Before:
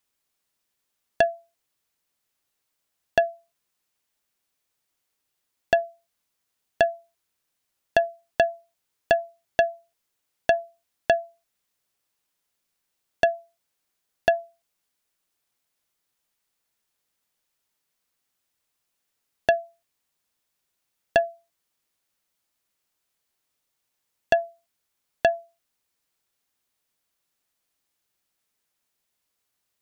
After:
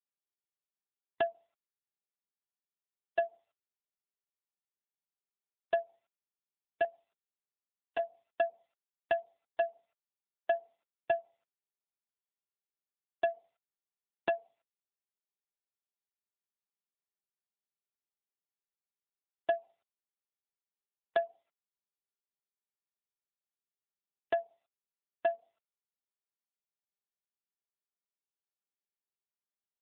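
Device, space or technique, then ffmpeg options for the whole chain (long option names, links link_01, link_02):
mobile call with aggressive noise cancelling: -filter_complex "[0:a]asettb=1/sr,asplit=3[link_01][link_02][link_03];[link_01]atrim=end=6.844[link_04];[link_02]atrim=start=6.84:end=7.99,asetpts=PTS-STARTPTS,afade=type=in:duration=0.004:curve=qsin,afade=type=out:start_time=1.146:duration=0.004:curve=qsin,aecho=1:1:6.8:0.69,atrim=end_sample=50715[link_05];[link_03]atrim=start=7.986[link_06];[link_04][link_05]acrossfade=duration=0.004:curve1=hsin:curve2=qsin[link_07];[link_07][link_06]acrossfade=duration=0.004:curve1=qsin:curve2=hsin,highpass=140,afftdn=noise_reduction=18:noise_floor=-49,volume=-8dB" -ar 8000 -c:a libopencore_amrnb -b:a 7950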